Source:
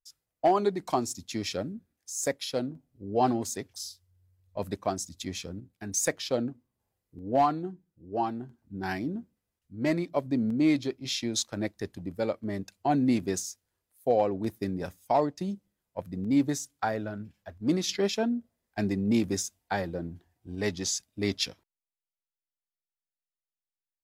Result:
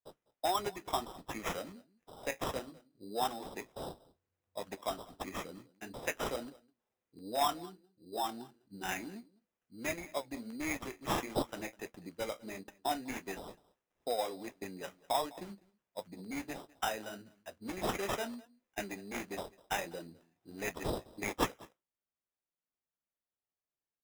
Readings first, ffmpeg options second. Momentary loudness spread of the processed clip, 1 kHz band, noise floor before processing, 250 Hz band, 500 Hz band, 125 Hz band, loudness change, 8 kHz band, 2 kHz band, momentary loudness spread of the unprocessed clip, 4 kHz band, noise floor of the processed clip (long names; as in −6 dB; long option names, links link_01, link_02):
15 LU, −6.0 dB, below −85 dBFS, −14.0 dB, −9.0 dB, −13.5 dB, −9.0 dB, −11.5 dB, −2.5 dB, 15 LU, −6.5 dB, below −85 dBFS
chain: -filter_complex "[0:a]aresample=11025,aresample=44100,acrossover=split=730[link_01][link_02];[link_01]acompressor=threshold=-37dB:ratio=5[link_03];[link_03][link_02]amix=inputs=2:normalize=0,highshelf=frequency=3700:gain=10.5,aecho=1:1:202:0.075,flanger=delay=9.8:depth=7.9:regen=-42:speed=1.5:shape=sinusoidal,highpass=240,acrusher=samples=10:mix=1:aa=0.000001"